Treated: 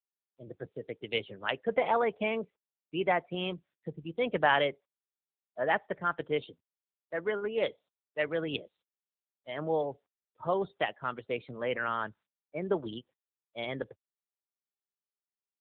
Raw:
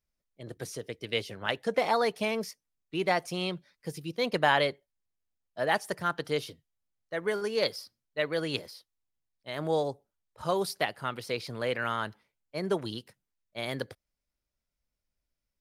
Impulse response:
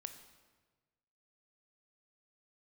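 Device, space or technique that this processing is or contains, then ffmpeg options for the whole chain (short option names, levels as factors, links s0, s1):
mobile call with aggressive noise cancelling: -filter_complex "[0:a]asplit=3[s0][s1][s2];[s0]afade=t=out:st=1.84:d=0.02[s3];[s1]lowpass=9100,afade=t=in:st=1.84:d=0.02,afade=t=out:st=2.42:d=0.02[s4];[s2]afade=t=in:st=2.42:d=0.02[s5];[s3][s4][s5]amix=inputs=3:normalize=0,highpass=f=150:p=1,afftdn=nr=28:nf=-43" -ar 8000 -c:a libopencore_amrnb -b:a 7950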